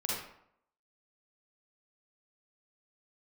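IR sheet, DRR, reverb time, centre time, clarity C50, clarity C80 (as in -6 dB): -5.0 dB, 0.70 s, 67 ms, -2.0 dB, 3.5 dB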